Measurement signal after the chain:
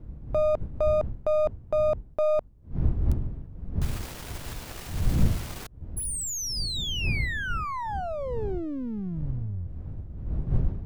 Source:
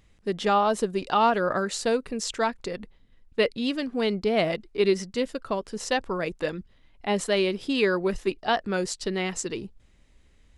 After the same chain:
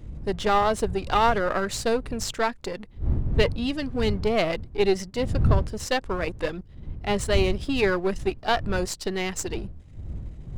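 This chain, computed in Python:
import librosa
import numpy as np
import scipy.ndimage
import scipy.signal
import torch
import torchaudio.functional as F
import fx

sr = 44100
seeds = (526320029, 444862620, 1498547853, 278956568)

y = np.where(x < 0.0, 10.0 ** (-7.0 / 20.0) * x, x)
y = fx.dmg_wind(y, sr, seeds[0], corner_hz=85.0, level_db=-33.0)
y = y * librosa.db_to_amplitude(3.0)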